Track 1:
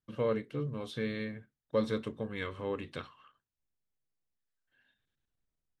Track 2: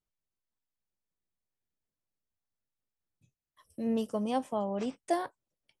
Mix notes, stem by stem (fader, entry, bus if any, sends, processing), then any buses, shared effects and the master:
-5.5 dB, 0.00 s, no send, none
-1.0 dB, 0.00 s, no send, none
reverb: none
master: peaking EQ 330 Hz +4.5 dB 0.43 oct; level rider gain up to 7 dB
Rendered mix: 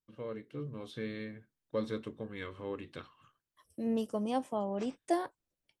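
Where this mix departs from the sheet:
stem 1 -5.5 dB -> -12.0 dB; stem 2 -1.0 dB -> -9.5 dB

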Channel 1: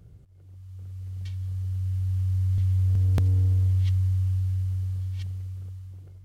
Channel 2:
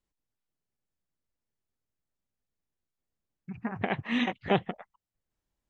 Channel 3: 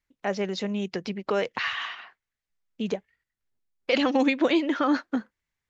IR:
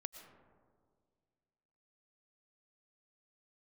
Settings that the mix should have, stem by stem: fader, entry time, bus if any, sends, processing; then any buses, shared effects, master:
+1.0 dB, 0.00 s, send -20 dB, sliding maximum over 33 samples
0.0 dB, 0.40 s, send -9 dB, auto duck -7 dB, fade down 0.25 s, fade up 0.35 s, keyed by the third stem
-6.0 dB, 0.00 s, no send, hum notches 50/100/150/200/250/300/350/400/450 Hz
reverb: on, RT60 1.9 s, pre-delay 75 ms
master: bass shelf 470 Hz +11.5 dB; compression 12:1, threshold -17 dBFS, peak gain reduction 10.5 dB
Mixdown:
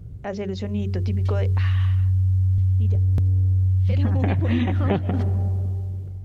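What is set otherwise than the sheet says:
stem 1: missing sliding maximum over 33 samples; stem 2 0.0 dB -> +10.5 dB

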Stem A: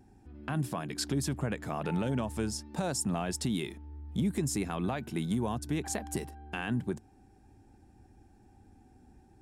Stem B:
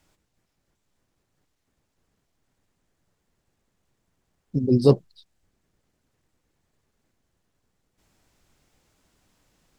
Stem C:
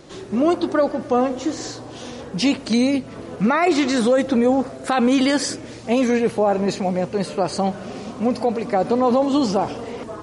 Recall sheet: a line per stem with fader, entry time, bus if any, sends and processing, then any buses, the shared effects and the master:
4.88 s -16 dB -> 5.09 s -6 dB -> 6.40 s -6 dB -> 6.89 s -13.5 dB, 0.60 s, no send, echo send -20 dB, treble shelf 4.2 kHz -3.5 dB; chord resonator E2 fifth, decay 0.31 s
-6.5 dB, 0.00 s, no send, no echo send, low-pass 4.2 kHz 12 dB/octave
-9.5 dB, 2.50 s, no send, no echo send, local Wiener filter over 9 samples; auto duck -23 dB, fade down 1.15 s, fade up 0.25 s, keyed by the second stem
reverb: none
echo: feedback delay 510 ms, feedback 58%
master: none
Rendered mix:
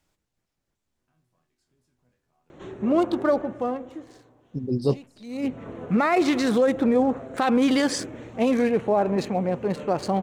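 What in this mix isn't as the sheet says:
stem A -16.0 dB -> -27.5 dB; stem B: missing low-pass 4.2 kHz 12 dB/octave; stem C -9.5 dB -> -3.0 dB

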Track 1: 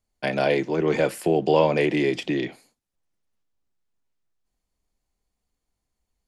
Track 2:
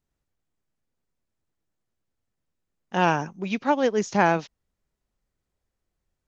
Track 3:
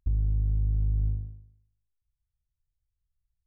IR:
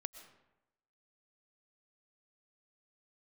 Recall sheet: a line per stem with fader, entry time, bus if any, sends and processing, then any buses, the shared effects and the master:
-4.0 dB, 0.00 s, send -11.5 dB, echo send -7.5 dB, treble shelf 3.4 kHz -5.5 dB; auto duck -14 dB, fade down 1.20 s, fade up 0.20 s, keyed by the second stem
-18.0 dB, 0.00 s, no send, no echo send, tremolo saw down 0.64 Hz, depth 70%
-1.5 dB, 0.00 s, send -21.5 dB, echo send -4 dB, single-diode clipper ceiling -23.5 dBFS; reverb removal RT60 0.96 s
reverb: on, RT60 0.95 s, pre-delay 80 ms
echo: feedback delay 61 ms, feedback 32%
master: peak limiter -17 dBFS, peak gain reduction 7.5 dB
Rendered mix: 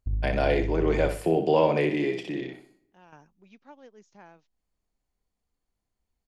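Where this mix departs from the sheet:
stem 2 -18.0 dB -> -25.0 dB; master: missing peak limiter -17 dBFS, peak gain reduction 7.5 dB

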